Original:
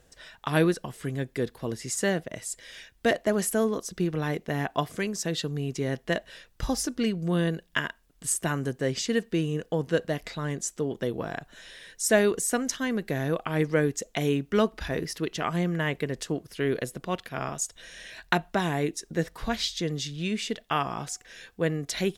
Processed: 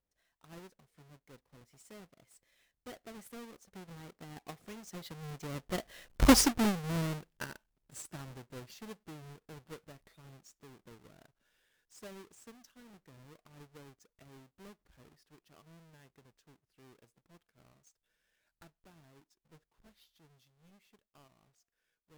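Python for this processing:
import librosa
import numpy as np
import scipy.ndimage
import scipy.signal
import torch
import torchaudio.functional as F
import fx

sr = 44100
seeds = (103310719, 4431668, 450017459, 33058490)

y = fx.halfwave_hold(x, sr)
y = fx.doppler_pass(y, sr, speed_mps=21, closest_m=1.8, pass_at_s=6.34)
y = y * 10.0 ** (3.5 / 20.0)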